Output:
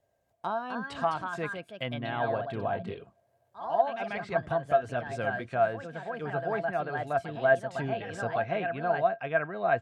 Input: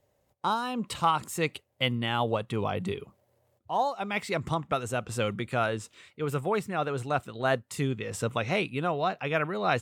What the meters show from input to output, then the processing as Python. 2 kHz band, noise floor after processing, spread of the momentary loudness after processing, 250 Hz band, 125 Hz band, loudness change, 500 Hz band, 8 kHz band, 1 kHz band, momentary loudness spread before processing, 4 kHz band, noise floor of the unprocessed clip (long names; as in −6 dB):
+0.5 dB, −72 dBFS, 9 LU, −5.0 dB, −5.5 dB, −0.5 dB, +2.0 dB, below −15 dB, −0.5 dB, 5 LU, −10.5 dB, −72 dBFS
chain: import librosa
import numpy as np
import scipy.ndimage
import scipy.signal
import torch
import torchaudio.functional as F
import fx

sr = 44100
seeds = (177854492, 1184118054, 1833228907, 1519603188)

y = fx.env_lowpass_down(x, sr, base_hz=2100.0, full_db=-26.0)
y = fx.echo_pitch(y, sr, ms=306, semitones=2, count=2, db_per_echo=-6.0)
y = fx.small_body(y, sr, hz=(680.0, 1600.0), ring_ms=100, db=18)
y = y * 10.0 ** (-6.5 / 20.0)